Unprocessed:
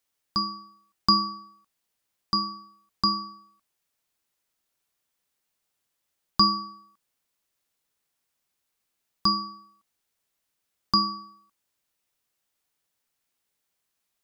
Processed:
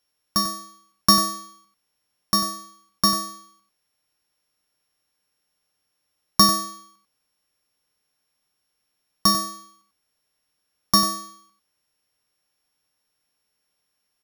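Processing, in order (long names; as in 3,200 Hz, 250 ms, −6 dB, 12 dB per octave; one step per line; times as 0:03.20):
samples sorted by size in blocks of 8 samples
single-tap delay 95 ms −9 dB
level +4.5 dB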